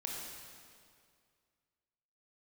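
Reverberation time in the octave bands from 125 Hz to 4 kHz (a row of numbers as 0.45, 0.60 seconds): 2.3, 2.2, 2.2, 2.1, 2.0, 1.9 seconds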